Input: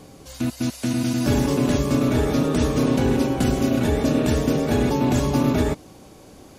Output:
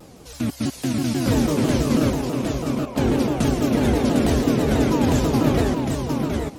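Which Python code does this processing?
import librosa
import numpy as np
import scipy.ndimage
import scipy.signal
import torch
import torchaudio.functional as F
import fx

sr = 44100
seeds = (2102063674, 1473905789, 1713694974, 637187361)

p1 = fx.vowel_filter(x, sr, vowel='a', at=(2.1, 2.96))
p2 = p1 + fx.echo_feedback(p1, sr, ms=755, feedback_pct=15, wet_db=-4.0, dry=0)
y = fx.vibrato_shape(p2, sr, shape='saw_down', rate_hz=6.1, depth_cents=250.0)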